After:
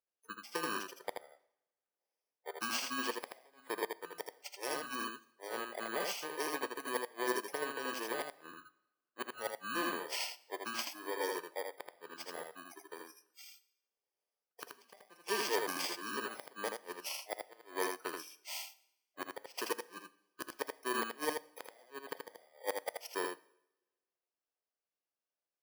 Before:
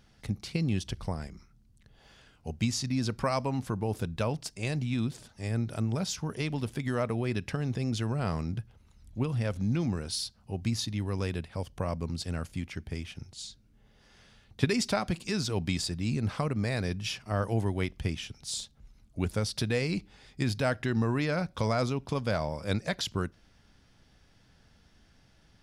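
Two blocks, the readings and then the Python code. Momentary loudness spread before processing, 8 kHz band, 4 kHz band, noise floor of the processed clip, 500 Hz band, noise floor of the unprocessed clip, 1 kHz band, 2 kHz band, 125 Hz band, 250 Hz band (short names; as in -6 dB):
9 LU, -4.5 dB, -5.5 dB, under -85 dBFS, -6.5 dB, -63 dBFS, -2.5 dB, -2.0 dB, -36.5 dB, -15.5 dB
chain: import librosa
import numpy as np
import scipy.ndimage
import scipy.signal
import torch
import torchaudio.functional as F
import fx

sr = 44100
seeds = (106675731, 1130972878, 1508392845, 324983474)

p1 = fx.bit_reversed(x, sr, seeds[0], block=32)
p2 = fx.lowpass(p1, sr, hz=2500.0, slope=6)
p3 = fx.noise_reduce_blind(p2, sr, reduce_db=26)
p4 = scipy.signal.sosfilt(scipy.signal.butter(4, 430.0, 'highpass', fs=sr, output='sos'), p3)
p5 = fx.gate_flip(p4, sr, shuts_db=-26.0, range_db=-29)
p6 = p5 + fx.echo_single(p5, sr, ms=80, db=-3.0, dry=0)
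p7 = fx.rev_double_slope(p6, sr, seeds[1], early_s=0.71, late_s=1.8, knee_db=-21, drr_db=14.0)
p8 = fx.upward_expand(p7, sr, threshold_db=-49.0, expansion=1.5)
y = p8 * librosa.db_to_amplitude(5.5)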